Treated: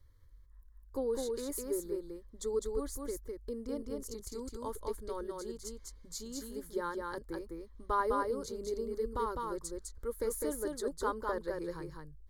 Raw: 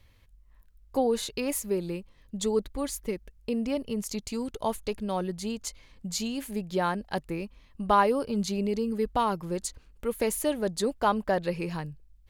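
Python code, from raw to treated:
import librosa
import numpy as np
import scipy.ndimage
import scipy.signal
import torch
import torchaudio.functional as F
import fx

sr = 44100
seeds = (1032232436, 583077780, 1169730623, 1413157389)

y = fx.low_shelf(x, sr, hz=210.0, db=8.0)
y = fx.fixed_phaser(y, sr, hz=710.0, stages=6)
y = y + 10.0 ** (-3.0 / 20.0) * np.pad(y, (int(205 * sr / 1000.0), 0))[:len(y)]
y = y * 10.0 ** (-8.0 / 20.0)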